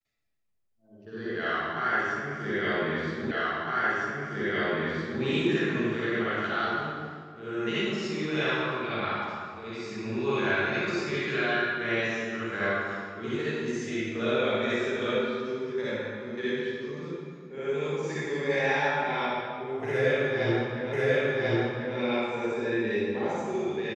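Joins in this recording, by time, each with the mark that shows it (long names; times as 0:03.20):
0:03.31: the same again, the last 1.91 s
0:20.93: the same again, the last 1.04 s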